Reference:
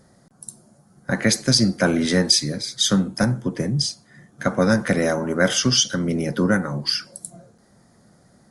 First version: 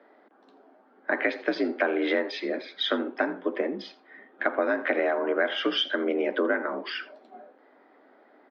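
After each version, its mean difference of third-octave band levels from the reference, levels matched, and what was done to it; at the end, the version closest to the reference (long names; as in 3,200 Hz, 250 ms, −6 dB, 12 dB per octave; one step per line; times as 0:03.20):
11.5 dB: single-sideband voice off tune +55 Hz 280–3,100 Hz
downward compressor 6 to 1, threshold −24 dBFS, peak gain reduction 10.5 dB
single-tap delay 83 ms −19 dB
level +2.5 dB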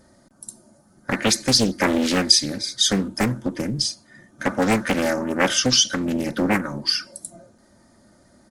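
3.5 dB: comb filter 3.3 ms, depth 59%
dynamic equaliser 590 Hz, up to −4 dB, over −31 dBFS, Q 0.87
highs frequency-modulated by the lows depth 0.96 ms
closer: second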